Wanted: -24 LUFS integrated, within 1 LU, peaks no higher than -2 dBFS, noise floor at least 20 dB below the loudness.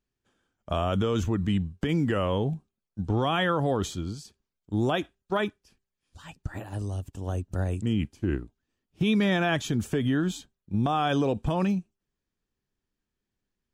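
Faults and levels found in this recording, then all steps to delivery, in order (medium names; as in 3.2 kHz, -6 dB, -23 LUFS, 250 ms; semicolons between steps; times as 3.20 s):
loudness -28.0 LUFS; peak level -14.0 dBFS; loudness target -24.0 LUFS
-> trim +4 dB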